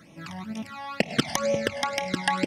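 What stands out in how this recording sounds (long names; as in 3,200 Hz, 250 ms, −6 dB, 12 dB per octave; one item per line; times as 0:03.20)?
phaser sweep stages 12, 2.1 Hz, lowest notch 410–1,500 Hz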